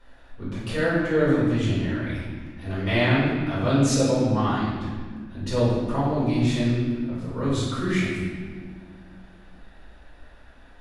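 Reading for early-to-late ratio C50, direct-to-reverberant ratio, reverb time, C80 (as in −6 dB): −1.5 dB, −9.5 dB, 1.7 s, 1.5 dB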